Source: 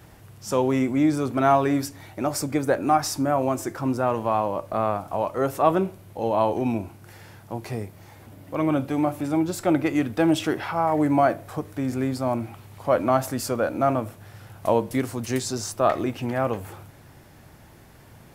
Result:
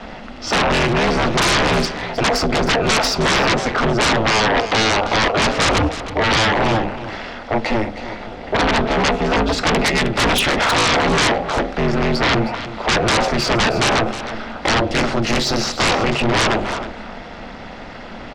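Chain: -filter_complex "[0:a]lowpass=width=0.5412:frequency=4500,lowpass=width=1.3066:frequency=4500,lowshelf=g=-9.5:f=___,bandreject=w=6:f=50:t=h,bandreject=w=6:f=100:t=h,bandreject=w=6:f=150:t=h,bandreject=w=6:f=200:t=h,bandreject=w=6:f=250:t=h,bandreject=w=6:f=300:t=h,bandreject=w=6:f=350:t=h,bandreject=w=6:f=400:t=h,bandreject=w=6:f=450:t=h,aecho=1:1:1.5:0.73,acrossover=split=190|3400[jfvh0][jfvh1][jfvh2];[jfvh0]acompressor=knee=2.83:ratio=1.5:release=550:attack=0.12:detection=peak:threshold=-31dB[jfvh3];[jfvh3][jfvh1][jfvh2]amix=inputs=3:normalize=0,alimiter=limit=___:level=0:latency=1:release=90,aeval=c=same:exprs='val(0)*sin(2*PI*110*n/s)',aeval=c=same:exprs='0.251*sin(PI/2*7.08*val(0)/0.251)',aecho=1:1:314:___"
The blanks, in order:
150, -12dB, 0.224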